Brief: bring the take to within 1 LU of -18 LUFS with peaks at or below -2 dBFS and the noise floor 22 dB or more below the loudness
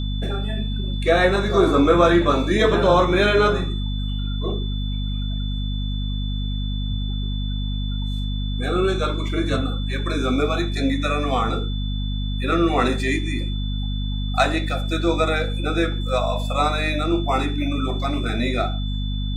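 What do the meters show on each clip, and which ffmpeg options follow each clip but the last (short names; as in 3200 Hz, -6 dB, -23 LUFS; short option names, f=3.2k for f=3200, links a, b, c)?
hum 50 Hz; harmonics up to 250 Hz; hum level -22 dBFS; steady tone 3500 Hz; tone level -35 dBFS; loudness -22.0 LUFS; peak -3.0 dBFS; loudness target -18.0 LUFS
-> -af "bandreject=f=50:t=h:w=6,bandreject=f=100:t=h:w=6,bandreject=f=150:t=h:w=6,bandreject=f=200:t=h:w=6,bandreject=f=250:t=h:w=6"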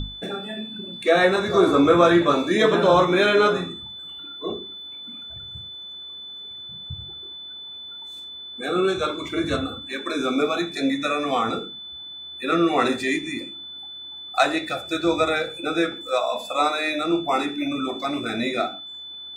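hum none; steady tone 3500 Hz; tone level -35 dBFS
-> -af "bandreject=f=3.5k:w=30"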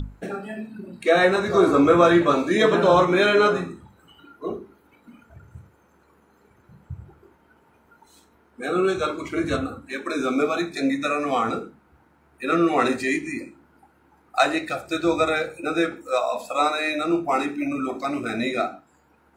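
steady tone none; loudness -22.0 LUFS; peak -3.5 dBFS; loudness target -18.0 LUFS
-> -af "volume=4dB,alimiter=limit=-2dB:level=0:latency=1"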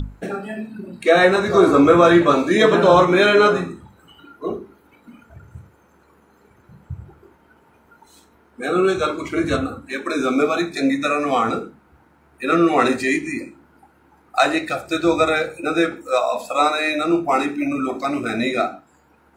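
loudness -18.0 LUFS; peak -2.0 dBFS; noise floor -56 dBFS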